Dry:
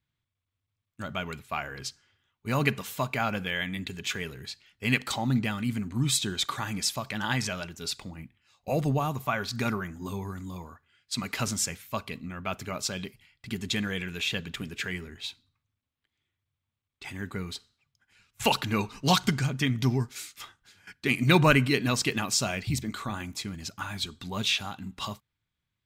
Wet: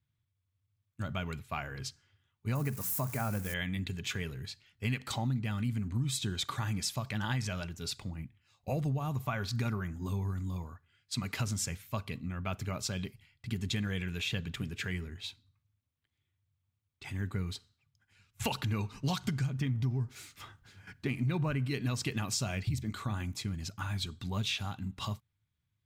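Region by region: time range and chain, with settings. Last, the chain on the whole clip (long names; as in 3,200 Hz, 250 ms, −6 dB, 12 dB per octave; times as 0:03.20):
0:02.55–0:03.54: spike at every zero crossing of −24.5 dBFS + parametric band 3,300 Hz −14.5 dB 1.1 octaves + mains-hum notches 60/120/180 Hz
0:19.58–0:21.65: mu-law and A-law mismatch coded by mu + high-shelf EQ 2,400 Hz −8.5 dB
whole clip: parametric band 100 Hz +11.5 dB 1.4 octaves; downward compressor 6 to 1, threshold −24 dBFS; level −5 dB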